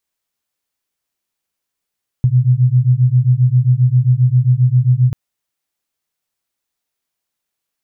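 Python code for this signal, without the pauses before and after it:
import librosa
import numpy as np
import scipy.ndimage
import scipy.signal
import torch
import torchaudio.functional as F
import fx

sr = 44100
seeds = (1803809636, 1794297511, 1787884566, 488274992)

y = fx.two_tone_beats(sr, length_s=2.89, hz=122.0, beat_hz=7.5, level_db=-12.0)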